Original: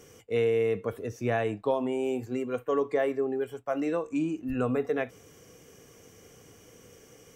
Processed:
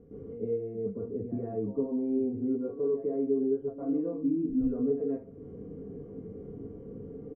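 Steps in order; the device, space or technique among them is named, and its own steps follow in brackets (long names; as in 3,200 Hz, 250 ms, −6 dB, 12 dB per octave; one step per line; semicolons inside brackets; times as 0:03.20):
comb filter 4.3 ms, depth 44%
television next door (downward compressor 3 to 1, threshold −44 dBFS, peak gain reduction 17.5 dB; low-pass filter 300 Hz 12 dB per octave; convolution reverb RT60 0.40 s, pre-delay 107 ms, DRR −10.5 dB)
0:00.58–0:02.10: high-frequency loss of the air 210 metres
level +3.5 dB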